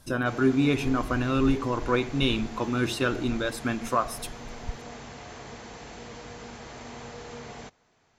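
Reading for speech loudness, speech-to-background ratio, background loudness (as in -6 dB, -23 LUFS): -26.5 LUFS, 15.5 dB, -42.0 LUFS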